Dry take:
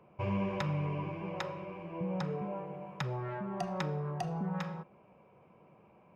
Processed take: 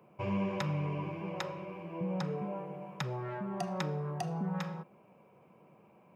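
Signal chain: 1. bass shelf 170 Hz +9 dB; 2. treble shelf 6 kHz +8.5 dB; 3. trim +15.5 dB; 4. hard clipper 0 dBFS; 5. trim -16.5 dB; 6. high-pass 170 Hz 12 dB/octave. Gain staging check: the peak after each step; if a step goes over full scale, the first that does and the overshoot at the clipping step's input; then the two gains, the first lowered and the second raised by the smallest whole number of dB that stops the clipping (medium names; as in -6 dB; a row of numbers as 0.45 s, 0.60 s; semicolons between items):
-18.5 dBFS, -17.0 dBFS, -1.5 dBFS, -1.5 dBFS, -18.0 dBFS, -17.0 dBFS; nothing clips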